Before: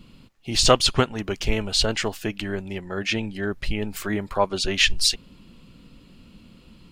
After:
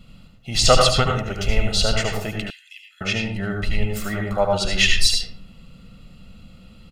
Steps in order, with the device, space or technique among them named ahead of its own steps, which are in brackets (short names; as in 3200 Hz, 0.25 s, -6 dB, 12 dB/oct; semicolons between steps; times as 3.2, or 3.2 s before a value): microphone above a desk (comb 1.5 ms, depth 64%; reverb RT60 0.55 s, pre-delay 70 ms, DRR 1.5 dB); 2.5–3.01 steep high-pass 2500 Hz 36 dB/oct; gain -1 dB